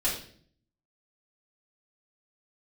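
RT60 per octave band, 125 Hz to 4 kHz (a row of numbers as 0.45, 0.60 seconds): 0.85, 0.75, 0.60, 0.45, 0.50, 0.50 seconds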